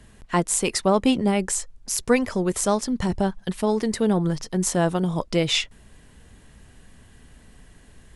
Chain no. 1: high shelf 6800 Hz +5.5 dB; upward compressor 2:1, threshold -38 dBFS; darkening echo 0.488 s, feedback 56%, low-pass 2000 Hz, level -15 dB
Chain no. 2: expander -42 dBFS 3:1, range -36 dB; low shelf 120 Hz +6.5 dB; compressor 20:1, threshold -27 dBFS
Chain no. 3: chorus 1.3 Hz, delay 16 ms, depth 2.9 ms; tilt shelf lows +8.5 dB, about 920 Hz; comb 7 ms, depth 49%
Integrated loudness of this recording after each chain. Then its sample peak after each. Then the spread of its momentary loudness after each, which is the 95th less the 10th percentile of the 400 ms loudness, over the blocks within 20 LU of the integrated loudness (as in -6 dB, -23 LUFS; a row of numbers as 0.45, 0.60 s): -22.5, -32.5, -20.0 LUFS; -2.5, -12.5, -3.5 dBFS; 11, 3, 10 LU